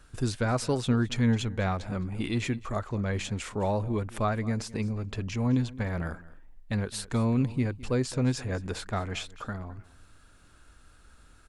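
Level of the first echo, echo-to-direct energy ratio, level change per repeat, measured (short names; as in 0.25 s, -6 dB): -19.5 dB, -19.5 dB, no steady repeat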